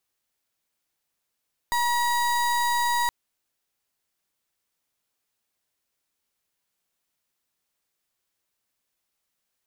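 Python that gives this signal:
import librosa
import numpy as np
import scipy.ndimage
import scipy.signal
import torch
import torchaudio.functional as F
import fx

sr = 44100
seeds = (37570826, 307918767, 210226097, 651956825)

y = fx.pulse(sr, length_s=1.37, hz=958.0, level_db=-23.5, duty_pct=34)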